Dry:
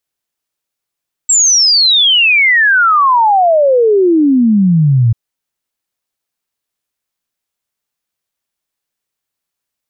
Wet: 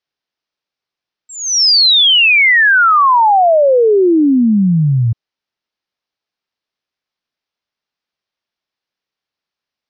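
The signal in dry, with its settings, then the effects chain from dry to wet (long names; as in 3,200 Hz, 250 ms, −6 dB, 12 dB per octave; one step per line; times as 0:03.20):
exponential sine sweep 7,700 Hz → 110 Hz 3.84 s −6 dBFS
Butterworth low-pass 5,600 Hz 48 dB per octave
low-shelf EQ 100 Hz −8 dB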